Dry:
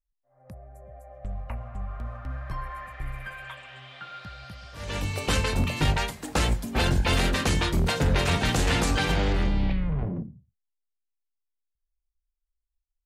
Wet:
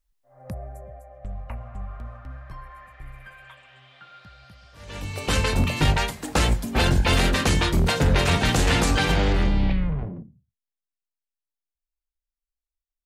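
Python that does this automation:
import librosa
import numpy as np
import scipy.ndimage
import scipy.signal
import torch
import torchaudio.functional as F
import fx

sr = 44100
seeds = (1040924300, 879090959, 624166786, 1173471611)

y = fx.gain(x, sr, db=fx.line((0.66, 10.0), (1.1, 0.0), (1.81, 0.0), (2.61, -6.5), (4.86, -6.5), (5.43, 3.5), (9.84, 3.5), (10.29, -8.0)))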